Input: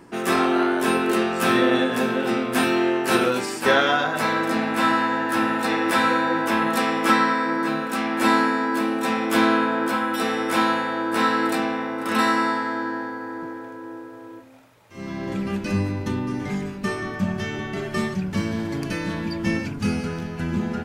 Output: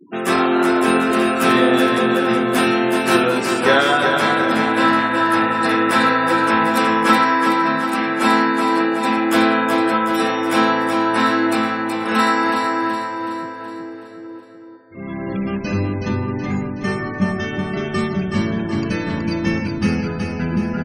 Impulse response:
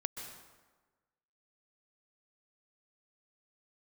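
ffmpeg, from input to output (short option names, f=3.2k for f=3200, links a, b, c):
-af "afftfilt=real='re*gte(hypot(re,im),0.0178)':imag='im*gte(hypot(re,im),0.0178)':win_size=1024:overlap=0.75,aecho=1:1:373|746|1119|1492|1865|2238:0.531|0.271|0.138|0.0704|0.0359|0.0183,volume=3.5dB"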